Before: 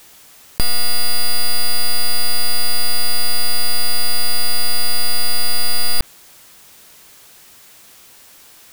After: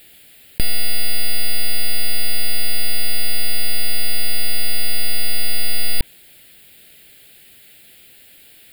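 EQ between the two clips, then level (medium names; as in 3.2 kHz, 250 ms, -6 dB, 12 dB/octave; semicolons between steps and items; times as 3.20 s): peaking EQ 4.5 kHz +2.5 dB 1.7 oct; band-stop 950 Hz, Q 27; static phaser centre 2.6 kHz, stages 4; 0.0 dB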